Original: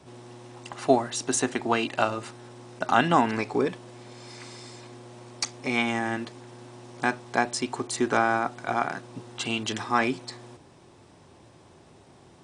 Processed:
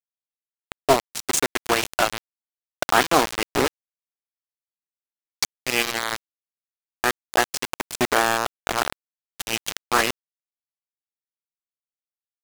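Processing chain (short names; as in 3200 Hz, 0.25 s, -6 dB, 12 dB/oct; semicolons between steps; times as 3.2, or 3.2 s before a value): dynamic EQ 840 Hz, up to -8 dB, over -43 dBFS, Q 6.4; HPF 330 Hz 12 dB/oct; bit-crush 4-bit; Doppler distortion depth 0.36 ms; gain +4.5 dB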